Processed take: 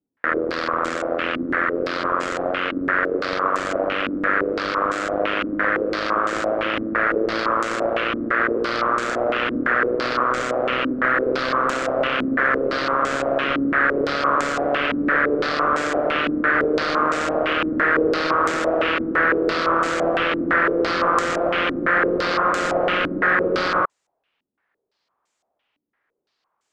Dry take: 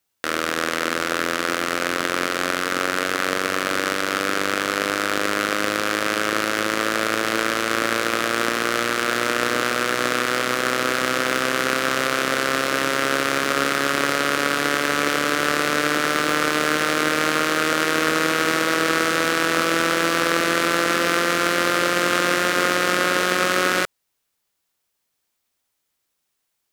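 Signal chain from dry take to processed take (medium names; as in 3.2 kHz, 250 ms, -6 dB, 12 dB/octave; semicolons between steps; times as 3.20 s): wavefolder -11 dBFS; overdrive pedal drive 16 dB, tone 1 kHz, clips at -11 dBFS; step-sequenced low-pass 5.9 Hz 270–7400 Hz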